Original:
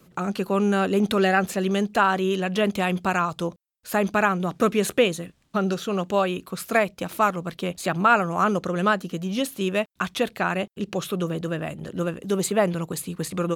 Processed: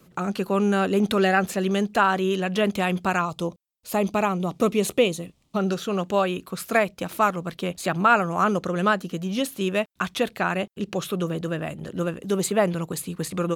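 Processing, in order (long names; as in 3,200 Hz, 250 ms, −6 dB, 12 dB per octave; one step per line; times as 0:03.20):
0:03.21–0:05.60: parametric band 1,600 Hz −14 dB 0.41 octaves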